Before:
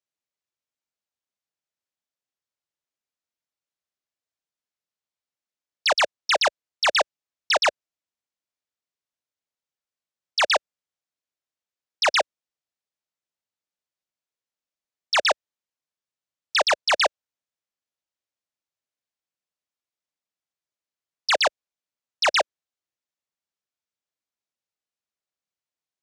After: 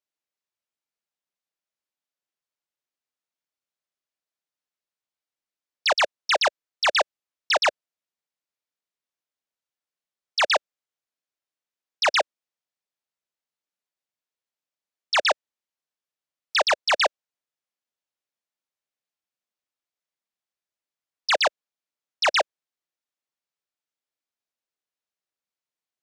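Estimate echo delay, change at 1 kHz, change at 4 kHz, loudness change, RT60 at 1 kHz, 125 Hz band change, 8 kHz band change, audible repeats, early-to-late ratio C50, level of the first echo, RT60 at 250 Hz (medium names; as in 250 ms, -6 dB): no echo, -0.5 dB, -1.0 dB, -0.5 dB, no reverb, no reading, -2.5 dB, no echo, no reverb, no echo, no reverb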